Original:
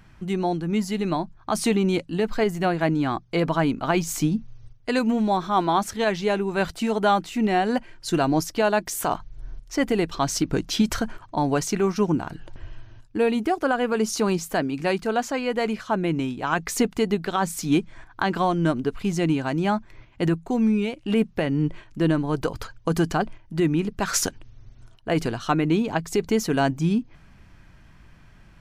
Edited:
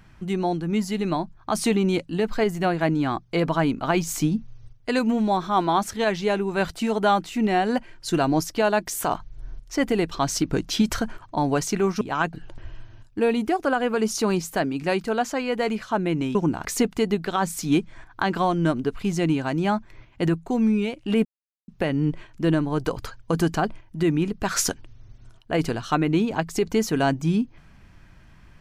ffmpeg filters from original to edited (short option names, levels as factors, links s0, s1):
-filter_complex "[0:a]asplit=6[s0][s1][s2][s3][s4][s5];[s0]atrim=end=12.012[s6];[s1]atrim=start=16.328:end=16.652[s7];[s2]atrim=start=12.308:end=16.332[s8];[s3]atrim=start=12.008:end=12.312[s9];[s4]atrim=start=16.648:end=21.25,asetpts=PTS-STARTPTS,afade=t=out:st=4.598:d=0.004:c=hsin,apad=pad_dur=0.43[s10];[s5]atrim=start=21.25,asetpts=PTS-STARTPTS,afade=t=in:d=0.004:c=hsin[s11];[s6][s7]acrossfade=d=0.004:c1=hsin:c2=hsin[s12];[s12][s8]acrossfade=d=0.004:c1=hsin:c2=hsin[s13];[s13][s9]acrossfade=d=0.004:c1=hsin:c2=hsin[s14];[s10][s11]concat=n=2:v=0:a=1[s15];[s14][s15]acrossfade=d=0.004:c1=hsin:c2=hsin"